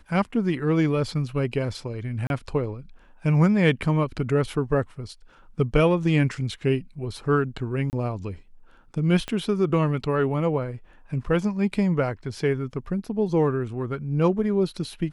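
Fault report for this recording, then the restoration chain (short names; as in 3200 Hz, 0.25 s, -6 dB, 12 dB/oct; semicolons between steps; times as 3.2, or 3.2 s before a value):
2.27–2.3 gap 31 ms
7.9–7.93 gap 29 ms
9.28 pop -16 dBFS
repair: de-click; interpolate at 2.27, 31 ms; interpolate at 7.9, 29 ms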